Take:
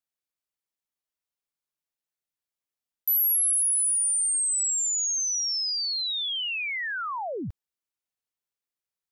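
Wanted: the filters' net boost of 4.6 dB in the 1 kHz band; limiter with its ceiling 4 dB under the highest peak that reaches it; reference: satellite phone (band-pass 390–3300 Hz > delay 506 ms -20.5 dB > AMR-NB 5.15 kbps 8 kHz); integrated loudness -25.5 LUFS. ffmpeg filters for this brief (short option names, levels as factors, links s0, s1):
-af "equalizer=f=1000:t=o:g=6,alimiter=limit=0.0708:level=0:latency=1,highpass=390,lowpass=3300,aecho=1:1:506:0.0944,volume=1.88" -ar 8000 -c:a libopencore_amrnb -b:a 5150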